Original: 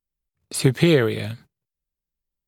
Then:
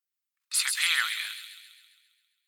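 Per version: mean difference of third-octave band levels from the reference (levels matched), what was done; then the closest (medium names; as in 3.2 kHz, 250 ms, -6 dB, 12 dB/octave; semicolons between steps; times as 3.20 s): 20.5 dB: steep high-pass 1.2 kHz 36 dB/octave; feedback echo behind a high-pass 134 ms, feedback 57%, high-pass 3.6 kHz, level -4 dB; trim +1.5 dB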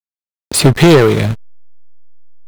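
4.5 dB: waveshaping leveller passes 3; hysteresis with a dead band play -17 dBFS; trim +4 dB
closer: second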